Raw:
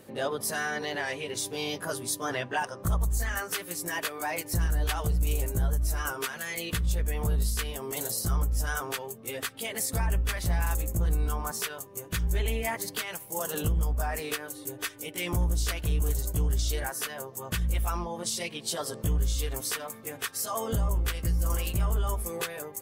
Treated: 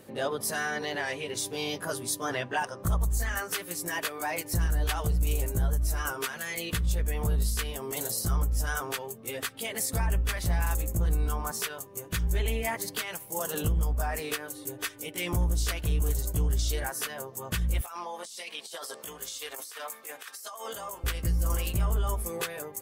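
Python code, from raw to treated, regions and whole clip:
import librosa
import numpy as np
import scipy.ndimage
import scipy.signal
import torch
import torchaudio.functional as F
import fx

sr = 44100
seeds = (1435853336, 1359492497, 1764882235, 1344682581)

y = fx.chain(x, sr, fx.bessel_highpass(hz=810.0, order=2),
    fx.over_compress(threshold_db=-40.0, ratio=-1.0), at=(17.81, 21.04))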